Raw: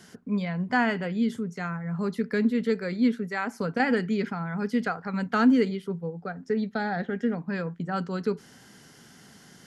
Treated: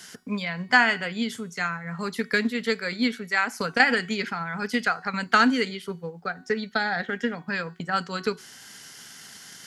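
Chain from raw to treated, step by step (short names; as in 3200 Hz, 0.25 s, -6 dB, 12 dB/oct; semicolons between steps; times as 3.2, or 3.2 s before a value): low shelf 190 Hz +4 dB; transient shaper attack +5 dB, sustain -1 dB; tilt shelf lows -10 dB, about 820 Hz; de-hum 372 Hz, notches 38; gain +1.5 dB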